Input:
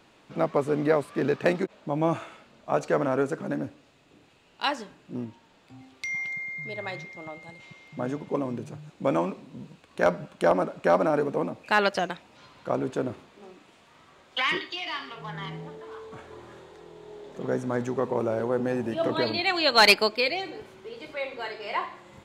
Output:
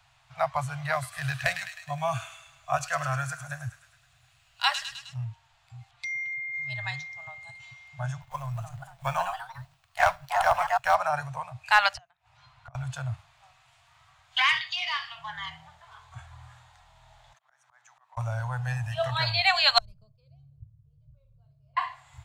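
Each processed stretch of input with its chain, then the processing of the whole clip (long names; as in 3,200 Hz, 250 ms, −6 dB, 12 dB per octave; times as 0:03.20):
0:00.92–0:05.14: high-shelf EQ 8,000 Hz +6.5 dB + notch filter 890 Hz, Q 5.7 + delay with a high-pass on its return 104 ms, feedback 63%, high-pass 1,700 Hz, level −7.5 dB
0:05.91–0:06.54: high-shelf EQ 4,800 Hz −11 dB + comb filter 5.7 ms, depth 82% + downward compressor 1.5 to 1, threshold −49 dBFS
0:08.21–0:10.95: mu-law and A-law mismatch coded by A + delay with pitch and tempo change per echo 260 ms, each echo +3 semitones, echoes 3, each echo −6 dB
0:11.94–0:12.75: high-shelf EQ 3,300 Hz −9.5 dB + gate with flip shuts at −23 dBFS, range −26 dB
0:17.33–0:18.17: high-pass filter 1,200 Hz + high-shelf EQ 2,100 Hz −8.5 dB + volume swells 354 ms
0:19.78–0:21.77: downward compressor 2.5 to 1, threshold −21 dBFS + inverse Chebyshev low-pass filter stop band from 740 Hz + parametric band 170 Hz +5.5 dB 1.6 octaves
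whole clip: Chebyshev band-stop filter 130–690 Hz, order 4; bass and treble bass +7 dB, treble +3 dB; noise reduction from a noise print of the clip's start 7 dB; level +3.5 dB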